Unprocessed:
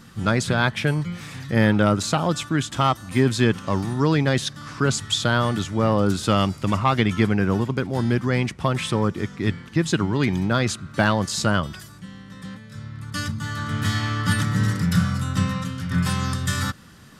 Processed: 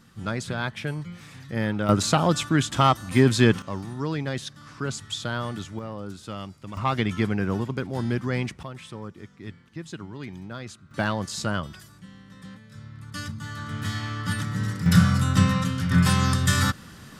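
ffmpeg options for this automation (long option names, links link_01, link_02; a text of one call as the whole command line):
ffmpeg -i in.wav -af "asetnsamples=nb_out_samples=441:pad=0,asendcmd='1.89 volume volume 1dB;3.62 volume volume -9dB;5.79 volume volume -16dB;6.77 volume volume -5dB;8.63 volume volume -16dB;10.91 volume volume -6.5dB;14.86 volume volume 3dB',volume=-8.5dB" out.wav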